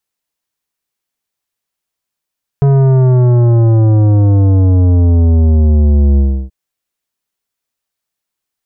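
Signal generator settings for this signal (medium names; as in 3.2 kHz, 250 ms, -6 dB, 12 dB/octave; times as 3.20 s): sub drop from 140 Hz, over 3.88 s, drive 12 dB, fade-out 0.32 s, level -7 dB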